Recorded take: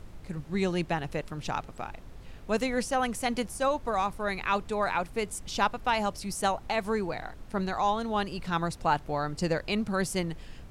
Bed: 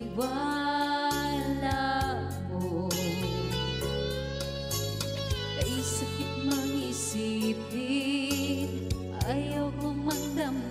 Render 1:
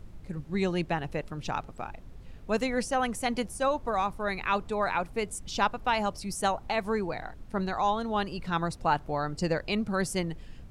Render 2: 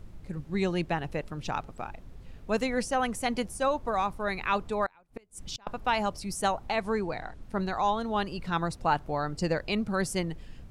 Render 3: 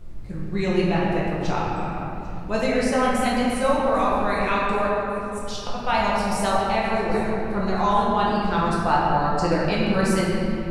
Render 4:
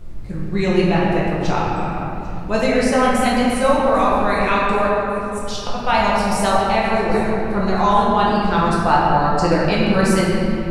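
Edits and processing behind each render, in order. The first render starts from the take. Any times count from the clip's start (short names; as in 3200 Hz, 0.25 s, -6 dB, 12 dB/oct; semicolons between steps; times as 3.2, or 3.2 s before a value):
denoiser 6 dB, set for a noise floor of -47 dBFS
4.86–5.67 flipped gate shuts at -24 dBFS, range -31 dB; 6.72–7.42 LPF 11000 Hz 24 dB/oct
thin delay 0.797 s, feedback 56%, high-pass 5300 Hz, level -17 dB; shoebox room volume 120 m³, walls hard, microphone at 0.86 m
gain +5 dB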